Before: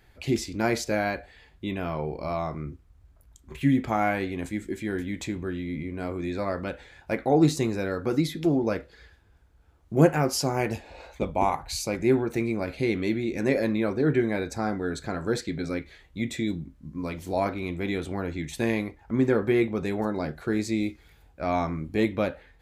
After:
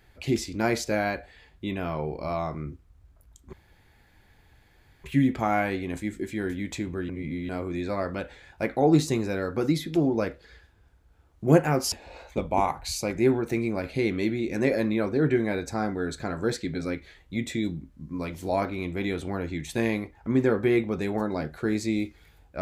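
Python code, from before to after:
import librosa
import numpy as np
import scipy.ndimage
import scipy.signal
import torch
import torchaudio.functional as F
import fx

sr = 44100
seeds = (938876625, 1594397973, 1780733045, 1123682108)

y = fx.edit(x, sr, fx.insert_room_tone(at_s=3.53, length_s=1.51),
    fx.reverse_span(start_s=5.58, length_s=0.4),
    fx.cut(start_s=10.41, length_s=0.35), tone=tone)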